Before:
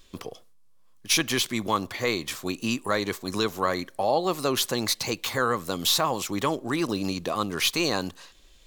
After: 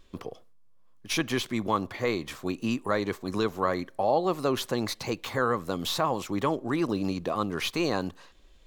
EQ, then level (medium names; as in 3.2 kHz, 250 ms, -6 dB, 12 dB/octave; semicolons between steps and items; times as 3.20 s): treble shelf 2.7 kHz -12 dB; 0.0 dB